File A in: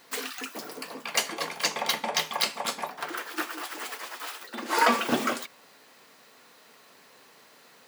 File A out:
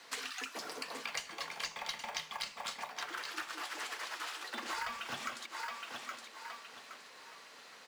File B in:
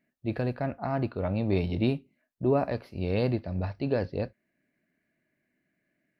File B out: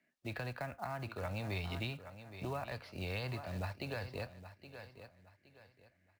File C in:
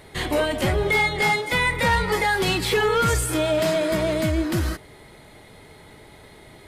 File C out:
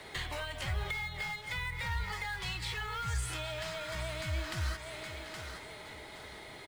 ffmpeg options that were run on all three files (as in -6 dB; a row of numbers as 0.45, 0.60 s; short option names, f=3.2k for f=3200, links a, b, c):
-filter_complex "[0:a]lowshelf=f=480:g=-10.5,acrossover=split=140|710|2300[a][b][c][d];[b]acompressor=threshold=-46dB:ratio=10[e];[a][e][c][d]amix=inputs=4:normalize=0,lowpass=7.6k,acrusher=bits=5:mode=log:mix=0:aa=0.000001,aecho=1:1:818|1636|2454:0.2|0.0599|0.018,acrossover=split=150[f][g];[g]acompressor=threshold=-40dB:ratio=6[h];[f][h]amix=inputs=2:normalize=0,volume=2dB"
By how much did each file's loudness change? -12.0, -12.5, -16.5 LU